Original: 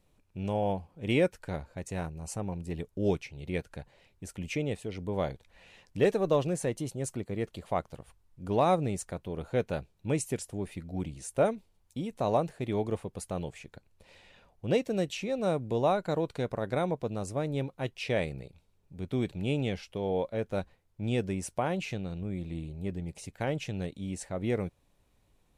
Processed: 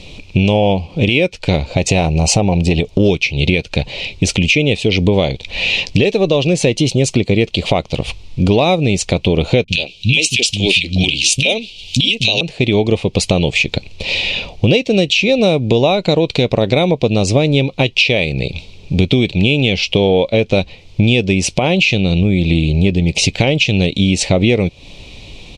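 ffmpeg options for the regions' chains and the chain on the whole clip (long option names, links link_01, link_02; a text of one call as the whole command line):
ffmpeg -i in.wav -filter_complex "[0:a]asettb=1/sr,asplit=3[link_01][link_02][link_03];[link_01]atrim=end=1.704[link_04];[link_02]atrim=start=1.7:end=3,asetpts=PTS-STARTPTS,afade=type=in:duration=0.004:curve=qsin,afade=type=out:start_time=1.296:duration=0.004:curve=qsin,equalizer=frequency=720:width_type=o:width=0.72:gain=7.5,acompressor=threshold=-34dB:ratio=2:attack=3.2:release=140:knee=1:detection=peak[link_05];[link_03]atrim=start=2.996[link_06];[link_04][link_05]acrossfade=duration=0.004:curve1=hsin:curve2=qsin[link_07];[link_07][link_06]acrossfade=duration=0.004:curve1=qsin:curve2=hsin,asettb=1/sr,asplit=3[link_08][link_09][link_10];[link_08]atrim=end=9.644[link_11];[link_09]atrim=start=9.64:end=12.41,asetpts=PTS-STARTPTS,afade=type=in:duration=0.004:curve=qsin,afade=type=out:start_time=2.766:duration=0.004:curve=qsin,highshelf=frequency=2000:width_type=q:width=3:gain=12.5,acrossover=split=220|1500[link_12][link_13][link_14];[link_14]adelay=40[link_15];[link_13]adelay=70[link_16];[link_12][link_16][link_15]amix=inputs=3:normalize=0,atrim=end_sample=122157[link_17];[link_10]atrim=start=12.406[link_18];[link_11][link_17]acrossfade=duration=0.004:curve1=hsin:curve2=qsin[link_19];[link_19][link_18]acrossfade=duration=0.004:curve1=qsin:curve2=hsin,firequalizer=gain_entry='entry(500,0);entry(1600,-13);entry(2400,11);entry(4100,10);entry(12000,-21)':delay=0.05:min_phase=1,acompressor=threshold=-42dB:ratio=10,alimiter=level_in=33.5dB:limit=-1dB:release=50:level=0:latency=1,volume=-1dB" out.wav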